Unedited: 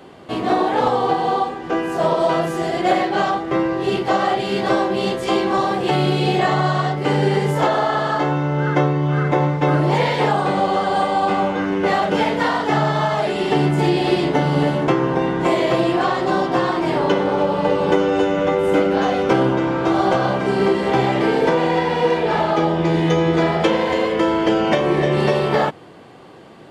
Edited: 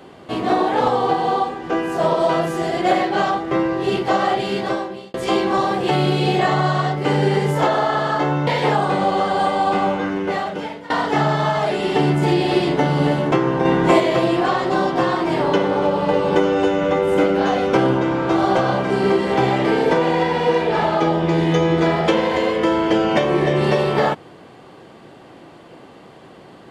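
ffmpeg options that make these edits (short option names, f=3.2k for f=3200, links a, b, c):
-filter_complex "[0:a]asplit=6[a][b][c][d][e][f];[a]atrim=end=5.14,asetpts=PTS-STARTPTS,afade=t=out:st=4.44:d=0.7[g];[b]atrim=start=5.14:end=8.472,asetpts=PTS-STARTPTS,afade=t=in:d=0.004:c=hsin[h];[c]atrim=start=10.028:end=12.46,asetpts=PTS-STARTPTS,afade=t=out:st=1.442:d=0.99:silence=0.0891251[i];[d]atrim=start=12.46:end=15.212,asetpts=PTS-STARTPTS,afade=t=in:d=0.004:c=hsin:silence=0.0891251[j];[e]atrim=start=15.208:end=15.562,asetpts=PTS-STARTPTS,volume=4dB[k];[f]atrim=start=15.558[l];[g][h]concat=n=2:v=0:a=1[m];[i][j]concat=n=2:v=0:a=1[n];[m][n]acrossfade=d=0.004:c1=hsin:c2=hsin[o];[o][k]acrossfade=d=0.004:c1=hsin:c2=hsin[p];[p][l]acrossfade=d=0.004:c1=hsin:c2=hsin"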